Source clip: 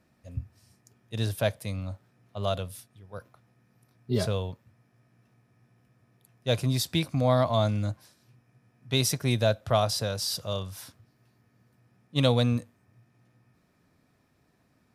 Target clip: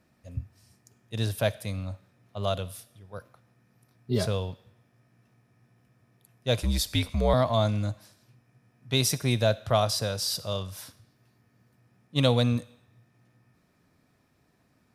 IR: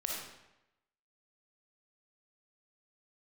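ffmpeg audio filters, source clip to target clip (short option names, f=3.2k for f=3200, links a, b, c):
-filter_complex "[0:a]asettb=1/sr,asplit=3[a][b][c];[a]atrim=end=6.614[d];[b]atrim=start=6.61:end=7.34,asetpts=PTS-STARTPTS,afade=t=in:d=0.004:c=qsin,afade=t=out:st=0.726:d=0.004:c=qsin,afreqshift=-62[e];[c]atrim=start=7.336[f];[d][e]acrossfade=d=0.004:c1=hsin:c2=qsin[g];[g][f]acrossfade=d=0.004:c1=qsin:c2=hsin,asplit=2[h][i];[i]tiltshelf=f=970:g=-7[j];[1:a]atrim=start_sample=2205,asetrate=41454,aresample=44100[k];[j][k]afir=irnorm=-1:irlink=0,volume=-23dB[l];[h][l]amix=inputs=2:normalize=0"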